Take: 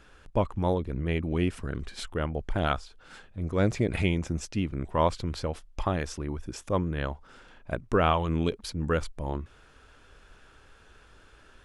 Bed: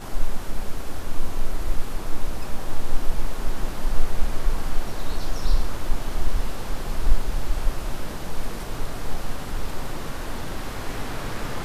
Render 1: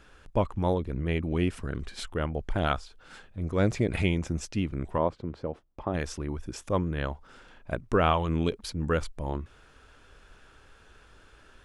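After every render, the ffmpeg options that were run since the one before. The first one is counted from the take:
-filter_complex "[0:a]asplit=3[a][b][c];[a]afade=t=out:st=4.97:d=0.02[d];[b]bandpass=f=340:t=q:w=0.59,afade=t=in:st=4.97:d=0.02,afade=t=out:st=5.93:d=0.02[e];[c]afade=t=in:st=5.93:d=0.02[f];[d][e][f]amix=inputs=3:normalize=0"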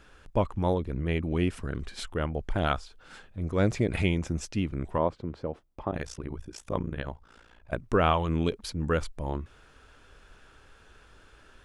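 -filter_complex "[0:a]asettb=1/sr,asplit=3[a][b][c];[a]atrim=end=5.914[d];[b]atrim=start=5.91:end=7.73,asetpts=PTS-STARTPTS,afade=t=in:d=0.004:c=qsin,afade=t=out:st=1.816:d=0.004:c=qsin,tremolo=f=58:d=0.919[e];[c]atrim=start=7.726[f];[d][e]acrossfade=d=0.004:c1=hsin:c2=qsin[g];[g][f]acrossfade=d=0.004:c1=qsin:c2=hsin"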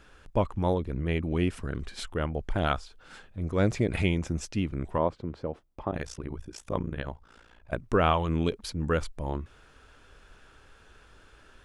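-af anull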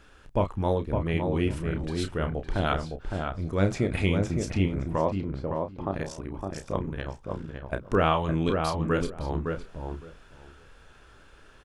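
-filter_complex "[0:a]asplit=2[a][b];[b]adelay=31,volume=-8dB[c];[a][c]amix=inputs=2:normalize=0,asplit=2[d][e];[e]adelay=561,lowpass=f=1.6k:p=1,volume=-4dB,asplit=2[f][g];[g]adelay=561,lowpass=f=1.6k:p=1,volume=0.16,asplit=2[h][i];[i]adelay=561,lowpass=f=1.6k:p=1,volume=0.16[j];[d][f][h][j]amix=inputs=4:normalize=0"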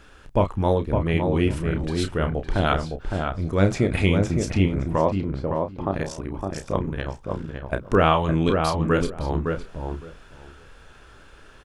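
-af "volume=5dB"

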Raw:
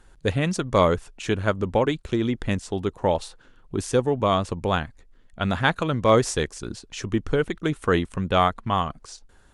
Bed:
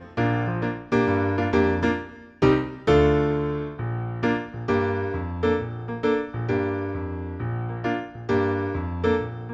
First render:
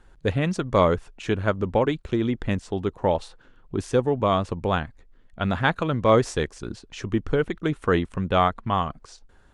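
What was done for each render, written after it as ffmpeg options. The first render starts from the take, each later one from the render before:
-af "lowpass=f=3.2k:p=1"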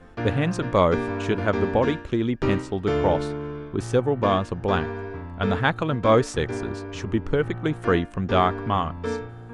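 -filter_complex "[1:a]volume=-6.5dB[a];[0:a][a]amix=inputs=2:normalize=0"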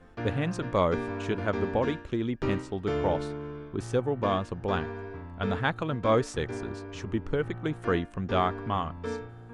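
-af "volume=-6dB"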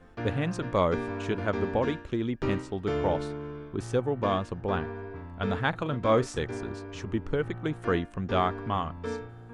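-filter_complex "[0:a]asettb=1/sr,asplit=3[a][b][c];[a]atrim=end=4.614[d];[b]atrim=start=4.61:end=5.16,asetpts=PTS-STARTPTS,afade=t=in:d=0.004:c=qsin,afade=t=out:st=0.546:d=0.004:c=qsin,lowpass=f=2.6k:p=1[e];[c]atrim=start=5.156[f];[d][e]acrossfade=d=0.004:c1=hsin:c2=qsin[g];[g][f]acrossfade=d=0.004:c1=qsin:c2=hsin,asettb=1/sr,asplit=3[h][i][j];[h]atrim=end=5.694[k];[i]atrim=start=5.69:end=6.42,asetpts=PTS-STARTPTS,afade=t=in:d=0.004:c=qsin,afade=t=out:st=0.726:d=0.004:c=qsin,asplit=2[l][m];[m]adelay=40,volume=-13dB[n];[l][n]amix=inputs=2:normalize=0,atrim=end_sample=32193[o];[j]atrim=start=6.416[p];[k][o]acrossfade=d=0.004:c1=hsin:c2=qsin[q];[q][p]acrossfade=d=0.004:c1=qsin:c2=hsin"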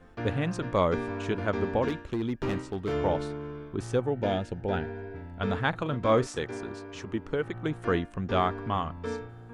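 -filter_complex "[0:a]asettb=1/sr,asplit=3[a][b][c];[a]atrim=end=1.884[d];[b]atrim=start=1.88:end=2.93,asetpts=PTS-STARTPTS,afade=t=in:d=0.004:c=qsin,afade=t=out:st=1.046:d=0.004:c=qsin,asoftclip=type=hard:threshold=-25dB[e];[c]atrim=start=2.926[f];[d][e]acrossfade=d=0.004:c1=hsin:c2=qsin[g];[g][f]acrossfade=d=0.004:c1=qsin:c2=hsin,asettb=1/sr,asplit=3[h][i][j];[h]atrim=end=4.104[k];[i]atrim=start=4.1:end=5.39,asetpts=PTS-STARTPTS,afade=t=in:d=0.004:c=qsin,afade=t=out:st=1.286:d=0.004:c=qsin,asuperstop=centerf=1100:order=4:qfactor=2.9[l];[j]atrim=start=5.386[m];[k][l]acrossfade=d=0.004:c1=hsin:c2=qsin[n];[n][m]acrossfade=d=0.004:c1=qsin:c2=hsin,asettb=1/sr,asplit=3[o][p][q];[o]atrim=end=6.274[r];[p]atrim=start=6.27:end=7.55,asetpts=PTS-STARTPTS,afade=t=in:d=0.004:c=qsin,afade=t=out:st=1.276:d=0.004:c=qsin,lowshelf=f=120:g=-10.5[s];[q]atrim=start=7.546[t];[r][s]acrossfade=d=0.004:c1=hsin:c2=qsin[u];[u][t]acrossfade=d=0.004:c1=qsin:c2=hsin"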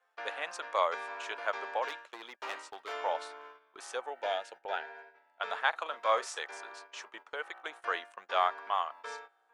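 -af "highpass=f=670:w=0.5412,highpass=f=670:w=1.3066,agate=range=-13dB:threshold=-49dB:ratio=16:detection=peak"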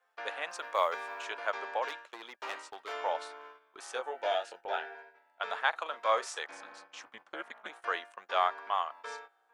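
-filter_complex "[0:a]asettb=1/sr,asplit=3[a][b][c];[a]atrim=end=0.504[d];[b]atrim=start=0.5:end=1.24,asetpts=PTS-STARTPTS,afade=t=in:d=0.004:c=qsin,afade=t=out:st=0.736:d=0.004:c=qsin,acrusher=bits=9:mode=log:mix=0:aa=0.000001[e];[c]atrim=start=1.236[f];[d][e]acrossfade=d=0.004:c1=hsin:c2=qsin[g];[g][f]acrossfade=d=0.004:c1=qsin:c2=hsin,asettb=1/sr,asplit=3[h][i][j];[h]atrim=end=3.924[k];[i]atrim=start=3.92:end=4.95,asetpts=PTS-STARTPTS,afade=t=in:d=0.004:c=qsin,afade=t=out:st=1.026:d=0.004:c=qsin,asplit=2[l][m];[m]adelay=23,volume=-3.5dB[n];[l][n]amix=inputs=2:normalize=0,atrim=end_sample=45423[o];[j]atrim=start=4.946[p];[k][o]acrossfade=d=0.004:c1=hsin:c2=qsin[q];[q][p]acrossfade=d=0.004:c1=qsin:c2=hsin,asplit=3[r][s][t];[r]afade=t=out:st=6.46:d=0.02[u];[s]aeval=exprs='val(0)*sin(2*PI*110*n/s)':c=same,afade=t=in:st=6.46:d=0.02,afade=t=out:st=7.68:d=0.02[v];[t]afade=t=in:st=7.68:d=0.02[w];[u][v][w]amix=inputs=3:normalize=0"

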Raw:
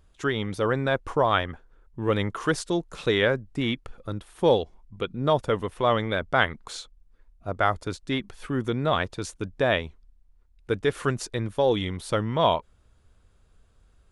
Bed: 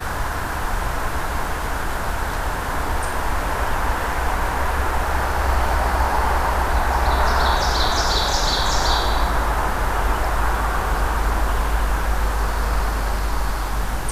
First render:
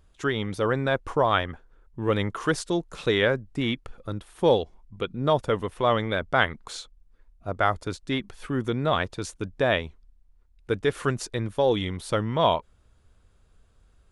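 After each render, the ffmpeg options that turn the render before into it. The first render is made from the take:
-af anull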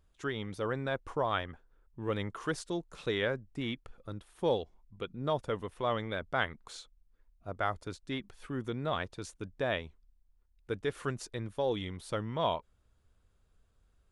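-af "volume=-9.5dB"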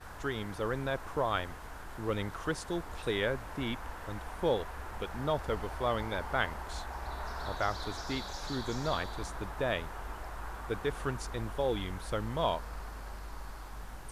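-filter_complex "[1:a]volume=-21.5dB[a];[0:a][a]amix=inputs=2:normalize=0"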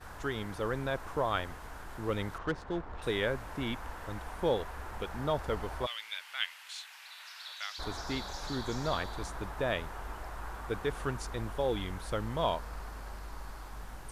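-filter_complex "[0:a]asettb=1/sr,asplit=3[a][b][c];[a]atrim=end=2.384[d];[b]atrim=start=2.38:end=3.02,asetpts=PTS-STARTPTS,afade=t=in:d=0.004:c=qsin,afade=t=out:st=0.636:d=0.004:c=qsin,adynamicsmooth=sensitivity=7:basefreq=1.7k[e];[c]atrim=start=3.016[f];[d][e]acrossfade=d=0.004:c1=hsin:c2=qsin[g];[g][f]acrossfade=d=0.004:c1=qsin:c2=hsin,asplit=3[h][i][j];[h]afade=t=out:st=5.85:d=0.02[k];[i]highpass=f=2.7k:t=q:w=2.4,afade=t=in:st=5.85:d=0.02,afade=t=out:st=7.78:d=0.02[l];[j]afade=t=in:st=7.78:d=0.02[m];[k][l][m]amix=inputs=3:normalize=0"

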